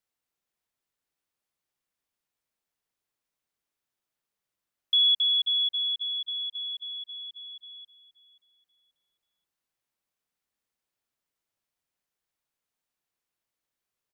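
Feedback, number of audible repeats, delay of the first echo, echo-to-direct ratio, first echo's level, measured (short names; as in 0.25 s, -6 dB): 29%, 2, 0.532 s, -16.5 dB, -17.0 dB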